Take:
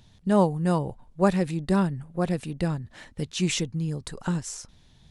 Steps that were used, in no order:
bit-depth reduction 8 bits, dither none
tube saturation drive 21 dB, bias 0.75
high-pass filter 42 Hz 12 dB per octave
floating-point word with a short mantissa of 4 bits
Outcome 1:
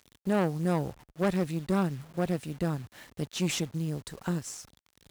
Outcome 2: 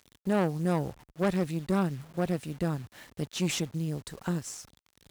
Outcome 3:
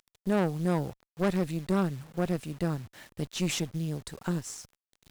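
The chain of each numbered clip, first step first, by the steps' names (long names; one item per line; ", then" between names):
bit-depth reduction, then tube saturation, then floating-point word with a short mantissa, then high-pass filter
bit-depth reduction, then floating-point word with a short mantissa, then tube saturation, then high-pass filter
floating-point word with a short mantissa, then high-pass filter, then bit-depth reduction, then tube saturation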